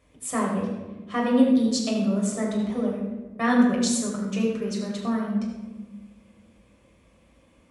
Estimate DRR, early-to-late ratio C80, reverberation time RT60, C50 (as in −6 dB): −3.5 dB, 4.0 dB, 1.3 s, 2.5 dB